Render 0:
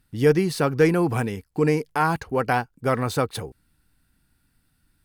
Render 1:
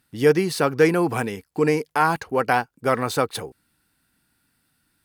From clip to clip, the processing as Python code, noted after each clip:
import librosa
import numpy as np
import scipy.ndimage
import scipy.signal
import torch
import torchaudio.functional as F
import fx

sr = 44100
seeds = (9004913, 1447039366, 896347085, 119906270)

y = fx.highpass(x, sr, hz=280.0, slope=6)
y = y * 10.0 ** (3.0 / 20.0)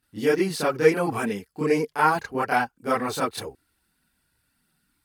y = fx.chorus_voices(x, sr, voices=4, hz=0.66, base_ms=29, depth_ms=2.8, mix_pct=70)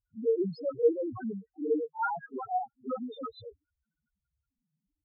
y = fx.vibrato(x, sr, rate_hz=0.62, depth_cents=28.0)
y = fx.spec_topn(y, sr, count=1)